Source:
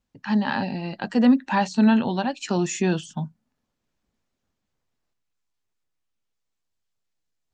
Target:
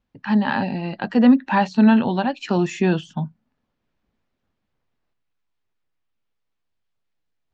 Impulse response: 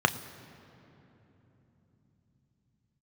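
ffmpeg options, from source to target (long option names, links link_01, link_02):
-af "lowpass=3500,volume=3.5dB"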